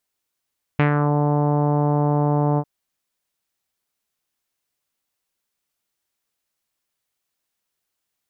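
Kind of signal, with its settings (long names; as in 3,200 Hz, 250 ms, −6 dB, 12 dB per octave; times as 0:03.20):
subtractive voice saw D3 24 dB per octave, low-pass 910 Hz, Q 1.8, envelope 1.5 octaves, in 0.32 s, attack 3.3 ms, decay 0.11 s, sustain −4 dB, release 0.06 s, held 1.79 s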